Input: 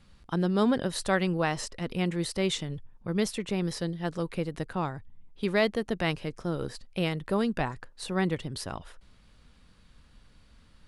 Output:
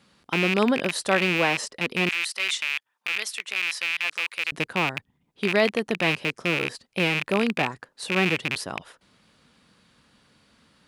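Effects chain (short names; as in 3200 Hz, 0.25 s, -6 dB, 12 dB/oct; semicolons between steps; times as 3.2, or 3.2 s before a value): rattling part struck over -37 dBFS, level -17 dBFS; HPF 210 Hz 12 dB/oct, from 2.09 s 1300 Hz, from 4.52 s 170 Hz; gain +4 dB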